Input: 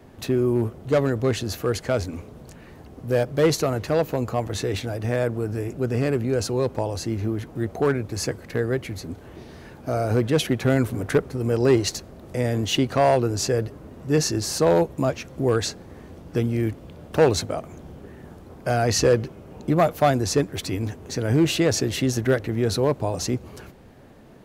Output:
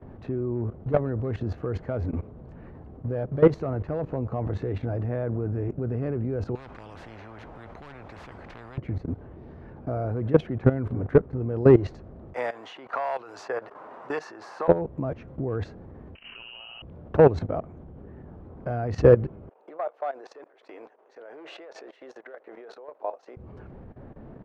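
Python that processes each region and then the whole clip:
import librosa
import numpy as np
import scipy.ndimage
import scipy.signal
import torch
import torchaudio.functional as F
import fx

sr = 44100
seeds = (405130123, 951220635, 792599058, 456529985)

y = fx.chain(x, sr, fx.peak_eq(hz=1100.0, db=-7.5, octaves=1.4),
    fx.spectral_comp(ratio=10.0), at=(6.55, 8.78))
y = fx.chain(y, sr, fx.highpass_res(hz=950.0, q=1.6),
    fx.high_shelf(hz=8500.0, db=8.0),
    fx.band_squash(depth_pct=70), at=(12.34, 14.68))
y = fx.chain(y, sr, fx.room_flutter(wall_m=10.4, rt60_s=1.2),
    fx.freq_invert(carrier_hz=3000),
    fx.over_compress(threshold_db=-24.0, ratio=-0.5), at=(16.15, 16.82))
y = fx.chain(y, sr, fx.level_steps(step_db=14),
    fx.highpass(hz=520.0, slope=24), at=(19.49, 23.37))
y = scipy.signal.sosfilt(scipy.signal.butter(2, 1300.0, 'lowpass', fs=sr, output='sos'), y)
y = fx.low_shelf(y, sr, hz=130.0, db=6.5)
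y = fx.level_steps(y, sr, step_db=16)
y = y * librosa.db_to_amplitude(4.0)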